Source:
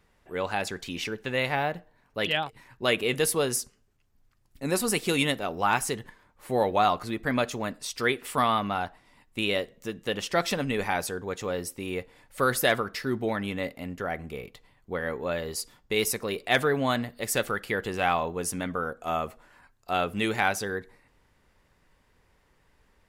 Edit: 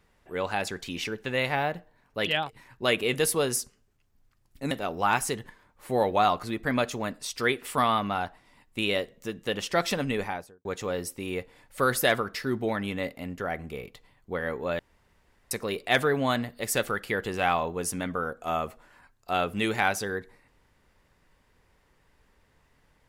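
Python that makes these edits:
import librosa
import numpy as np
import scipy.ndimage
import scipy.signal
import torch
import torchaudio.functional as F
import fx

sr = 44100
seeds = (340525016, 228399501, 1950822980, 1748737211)

y = fx.studio_fade_out(x, sr, start_s=10.68, length_s=0.57)
y = fx.edit(y, sr, fx.cut(start_s=4.71, length_s=0.6),
    fx.room_tone_fill(start_s=15.39, length_s=0.72), tone=tone)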